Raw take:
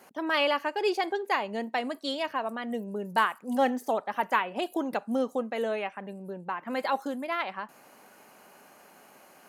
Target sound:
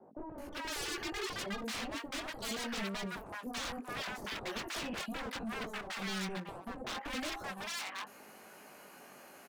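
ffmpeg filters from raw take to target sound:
-filter_complex "[0:a]acrossover=split=270|770|4400[a][b][c][d];[d]acompressor=threshold=-59dB:ratio=6[e];[a][b][c][e]amix=inputs=4:normalize=0,alimiter=limit=-23dB:level=0:latency=1:release=22,flanger=delay=18.5:depth=2.4:speed=0.71,aeval=exprs='0.0119*(abs(mod(val(0)/0.0119+3,4)-2)-1)':c=same,acrossover=split=820[f][g];[g]adelay=380[h];[f][h]amix=inputs=2:normalize=0,volume=4.5dB"

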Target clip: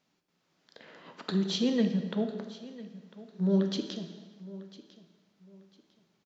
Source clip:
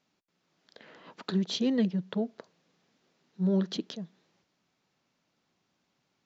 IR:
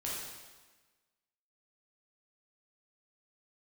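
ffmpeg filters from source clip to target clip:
-filter_complex "[0:a]aecho=1:1:1000|2000:0.126|0.034,asplit=2[a][b];[1:a]atrim=start_sample=2205[c];[b][c]afir=irnorm=-1:irlink=0,volume=-5dB[d];[a][d]amix=inputs=2:normalize=0,volume=-2.5dB"

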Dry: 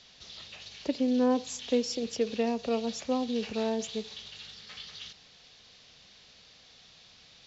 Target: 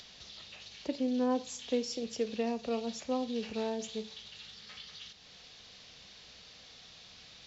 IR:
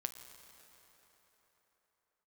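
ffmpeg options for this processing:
-filter_complex "[0:a]acompressor=mode=upward:threshold=-41dB:ratio=2.5[a];[1:a]atrim=start_sample=2205,atrim=end_sample=4410[b];[a][b]afir=irnorm=-1:irlink=0,volume=-3dB"

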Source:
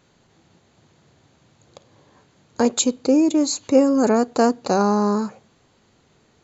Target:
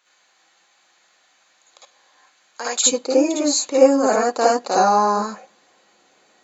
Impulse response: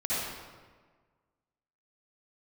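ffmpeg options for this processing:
-filter_complex "[0:a]asetnsamples=n=441:p=0,asendcmd='2.86 highpass f 470',highpass=1.1k[a];[1:a]atrim=start_sample=2205,atrim=end_sample=3528[b];[a][b]afir=irnorm=-1:irlink=0,volume=1.5dB"

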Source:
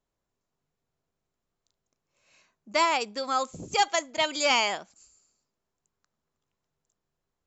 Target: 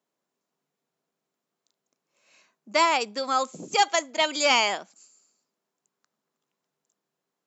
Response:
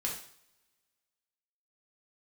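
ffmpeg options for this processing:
-af "highpass=f=180:w=0.5412,highpass=f=180:w=1.3066,volume=2.5dB"

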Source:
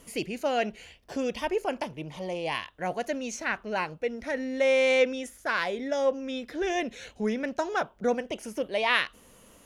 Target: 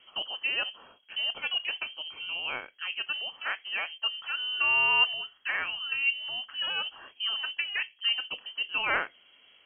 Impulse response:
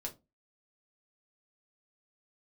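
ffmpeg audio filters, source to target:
-filter_complex "[0:a]bandreject=f=740:w=12,asplit=2[a][b];[1:a]atrim=start_sample=2205[c];[b][c]afir=irnorm=-1:irlink=0,volume=-10.5dB[d];[a][d]amix=inputs=2:normalize=0,lowpass=f=2.8k:t=q:w=0.5098,lowpass=f=2.8k:t=q:w=0.6013,lowpass=f=2.8k:t=q:w=0.9,lowpass=f=2.8k:t=q:w=2.563,afreqshift=-3300,volume=-4dB"

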